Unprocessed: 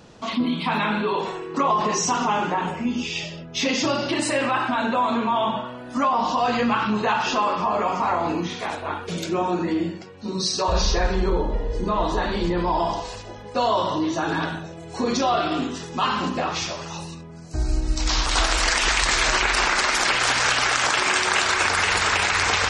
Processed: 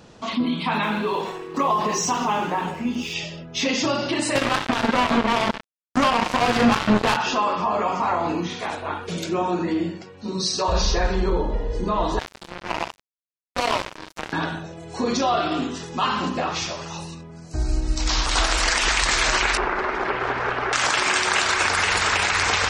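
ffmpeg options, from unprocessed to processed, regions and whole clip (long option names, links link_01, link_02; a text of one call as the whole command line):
ffmpeg -i in.wav -filter_complex "[0:a]asettb=1/sr,asplit=3[link_01][link_02][link_03];[link_01]atrim=end=0.834[link_04];[link_02]atrim=start=0.83:end=3.14,asetpts=PTS-STARTPTS,afade=type=in:duration=0.004:curve=qsin,afade=type=out:start_time=2.306:duration=0.004:curve=qsin,bandreject=frequency=1400:width=18,aeval=exprs='sgn(val(0))*max(abs(val(0))-0.00562,0)':channel_layout=same[link_05];[link_03]atrim=start=3.136[link_06];[link_04][link_05]acrossfade=duration=0.004:curve1=hsin:curve2=qsin[link_07];[link_07][link_06]acrossfade=duration=0.004:curve1=qsin:curve2=hsin,asettb=1/sr,asplit=3[link_08][link_09][link_10];[link_08]atrim=end=4.354[link_11];[link_09]atrim=start=4.35:end=7.17,asetpts=PTS-STARTPTS,afade=type=in:duration=0.004:curve=qsin,afade=type=out:start_time=2.816:duration=0.004:curve=qsin,lowshelf=frequency=350:gain=7,acrusher=bits=2:mix=0:aa=0.5[link_12];[link_10]atrim=start=7.166[link_13];[link_11][link_12]acrossfade=duration=0.004:curve1=hsin:curve2=qsin[link_14];[link_14][link_13]acrossfade=duration=0.004:curve1=qsin:curve2=hsin,asettb=1/sr,asplit=3[link_15][link_16][link_17];[link_15]atrim=end=12.194[link_18];[link_16]atrim=start=12.19:end=14.33,asetpts=PTS-STARTPTS,afade=type=in:duration=0.004:curve=qsin,afade=type=out:start_time=2.136:duration=0.004:curve=qsin,highpass=frequency=200:poles=1,acrusher=bits=2:mix=0:aa=0.5[link_19];[link_17]atrim=start=14.326[link_20];[link_18][link_19]acrossfade=duration=0.004:curve1=hsin:curve2=qsin[link_21];[link_21][link_20]acrossfade=duration=0.004:curve1=qsin:curve2=hsin,asettb=1/sr,asplit=3[link_22][link_23][link_24];[link_22]atrim=end=19.574[link_25];[link_23]atrim=start=19.57:end=20.73,asetpts=PTS-STARTPTS,afade=type=in:duration=0.004:curve=qsin,afade=type=out:start_time=1.156:duration=0.004:curve=qsin,lowpass=1400,equalizer=frequency=400:width=5.6:gain=11[link_26];[link_24]atrim=start=20.726[link_27];[link_25][link_26]acrossfade=duration=0.004:curve1=hsin:curve2=qsin[link_28];[link_28][link_27]acrossfade=duration=0.004:curve1=qsin:curve2=hsin" out.wav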